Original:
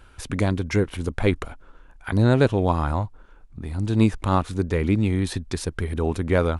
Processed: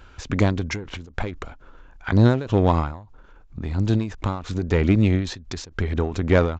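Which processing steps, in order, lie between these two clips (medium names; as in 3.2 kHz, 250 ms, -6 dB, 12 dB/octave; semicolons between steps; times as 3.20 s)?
Chebyshev shaper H 8 -29 dB, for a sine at -5 dBFS; resampled via 16 kHz; endings held to a fixed fall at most 100 dB/s; trim +3.5 dB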